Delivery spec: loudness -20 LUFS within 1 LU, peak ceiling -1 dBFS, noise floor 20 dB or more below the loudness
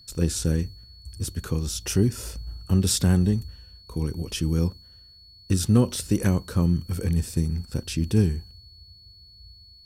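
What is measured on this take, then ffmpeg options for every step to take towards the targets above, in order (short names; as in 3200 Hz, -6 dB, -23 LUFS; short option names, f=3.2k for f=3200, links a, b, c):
steady tone 4400 Hz; tone level -49 dBFS; loudness -25.0 LUFS; peak -8.5 dBFS; loudness target -20.0 LUFS
-> -af "bandreject=f=4.4k:w=30"
-af "volume=5dB"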